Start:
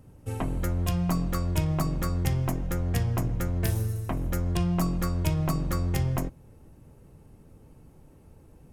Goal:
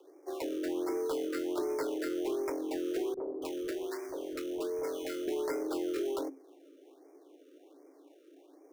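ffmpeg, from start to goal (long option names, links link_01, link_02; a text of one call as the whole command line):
ffmpeg -i in.wav -filter_complex "[0:a]acrusher=samples=15:mix=1:aa=0.000001,afreqshift=270,asoftclip=type=tanh:threshold=-19.5dB,asettb=1/sr,asplit=3[link_01][link_02][link_03];[link_01]atrim=end=3.144[link_04];[link_02]atrim=start=3.14:end=5.28,asetpts=PTS-STARTPTS,afade=type=in:duration=0.004:curve=qsin,afade=type=out:start_time=2.136:duration=0.004:curve=qsin,acrossover=split=260|860[link_05][link_06][link_07];[link_06]adelay=30[link_08];[link_07]adelay=280[link_09];[link_05][link_08][link_09]amix=inputs=3:normalize=0,atrim=end_sample=94374[link_10];[link_03]atrim=start=5.276[link_11];[link_04][link_10]acrossfade=duration=0.004:curve1=hsin:curve2=qsin[link_12];[link_12][link_11]acrossfade=duration=0.004:curve1=qsin:curve2=hsin,afftfilt=real='re*(1-between(b*sr/1024,830*pow(3500/830,0.5+0.5*sin(2*PI*1.3*pts/sr))/1.41,830*pow(3500/830,0.5+0.5*sin(2*PI*1.3*pts/sr))*1.41))':imag='im*(1-between(b*sr/1024,830*pow(3500/830,0.5+0.5*sin(2*PI*1.3*pts/sr))/1.41,830*pow(3500/830,0.5+0.5*sin(2*PI*1.3*pts/sr))*1.41))':win_size=1024:overlap=0.75,volume=-6dB" out.wav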